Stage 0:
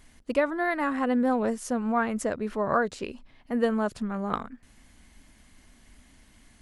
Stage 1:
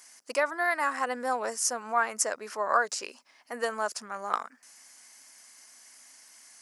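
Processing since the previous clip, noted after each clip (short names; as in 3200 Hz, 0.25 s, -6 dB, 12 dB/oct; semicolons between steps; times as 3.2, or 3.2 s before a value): HPF 810 Hz 12 dB/oct; resonant high shelf 4400 Hz +6 dB, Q 3; gain +3.5 dB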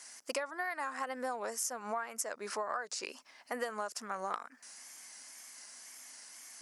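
wow and flutter 73 cents; compressor 16:1, threshold -35 dBFS, peak gain reduction 17 dB; gain +2 dB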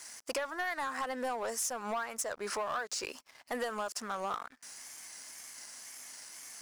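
sample leveller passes 3; gain -7 dB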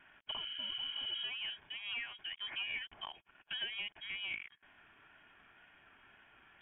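spectral repair 0.34–1.21, 270–2200 Hz before; notch comb 750 Hz; inverted band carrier 3500 Hz; gain -4 dB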